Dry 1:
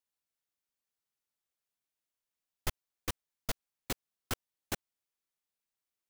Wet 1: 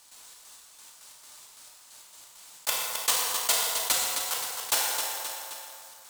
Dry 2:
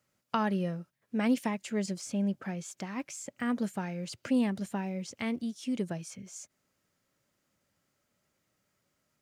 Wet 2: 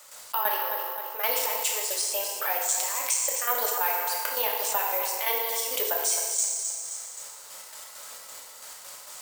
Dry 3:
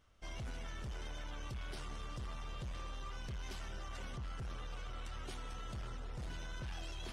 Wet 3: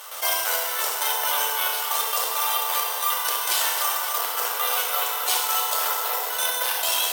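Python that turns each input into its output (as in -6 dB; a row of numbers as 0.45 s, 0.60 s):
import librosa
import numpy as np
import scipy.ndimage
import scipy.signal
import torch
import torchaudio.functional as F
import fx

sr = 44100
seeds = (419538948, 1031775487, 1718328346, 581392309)

p1 = fx.rider(x, sr, range_db=4, speed_s=0.5)
p2 = scipy.signal.sosfilt(scipy.signal.butter(6, 470.0, 'highpass', fs=sr, output='sos'), p1)
p3 = fx.step_gate(p2, sr, bpm=134, pattern='.xx.x..x.x', floor_db=-12.0, edge_ms=4.5)
p4 = fx.rev_fdn(p3, sr, rt60_s=1.3, lf_ratio=0.75, hf_ratio=0.75, size_ms=20.0, drr_db=-0.5)
p5 = (np.kron(p4[::3], np.eye(3)[0]) * 3)[:len(p4)]
p6 = fx.dynamic_eq(p5, sr, hz=3100.0, q=1.9, threshold_db=-53.0, ratio=4.0, max_db=3)
p7 = fx.tube_stage(p6, sr, drive_db=9.0, bias=0.5)
p8 = fx.graphic_eq(p7, sr, hz=(1000, 4000, 8000), db=(8, 6, 10))
p9 = p8 + fx.echo_feedback(p8, sr, ms=263, feedback_pct=33, wet_db=-12.0, dry=0)
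p10 = fx.env_flatten(p9, sr, amount_pct=50)
y = p10 * 10.0 ** (-6 / 20.0) / np.max(np.abs(p10))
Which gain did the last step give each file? +2.5 dB, +3.5 dB, +17.0 dB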